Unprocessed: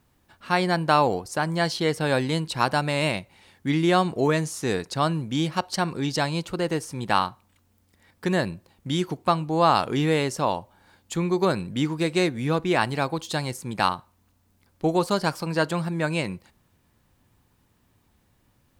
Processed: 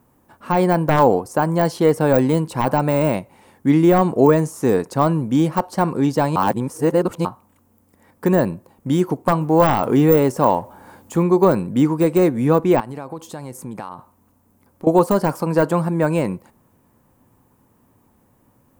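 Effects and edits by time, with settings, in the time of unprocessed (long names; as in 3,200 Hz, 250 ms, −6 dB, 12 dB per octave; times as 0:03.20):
0:06.36–0:07.25: reverse
0:09.41–0:11.23: mu-law and A-law mismatch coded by mu
0:12.80–0:14.87: downward compressor 10 to 1, threshold −35 dBFS
whole clip: octave-band graphic EQ 125/250/500/1,000/4,000 Hz +5/+9/+8/+9/−8 dB; de-essing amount 75%; high-shelf EQ 7,000 Hz +10 dB; level −1 dB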